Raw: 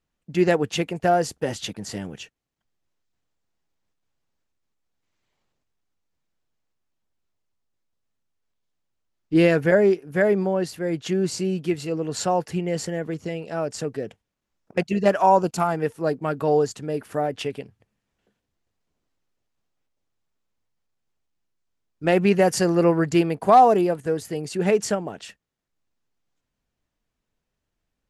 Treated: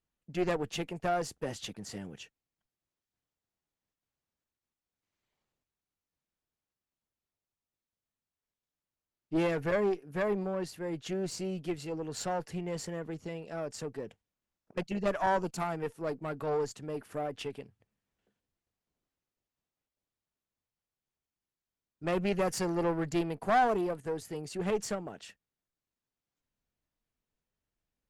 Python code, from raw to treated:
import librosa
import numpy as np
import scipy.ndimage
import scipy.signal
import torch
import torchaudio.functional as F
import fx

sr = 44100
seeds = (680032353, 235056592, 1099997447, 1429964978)

y = fx.diode_clip(x, sr, knee_db=-21.0)
y = y * librosa.db_to_amplitude(-8.5)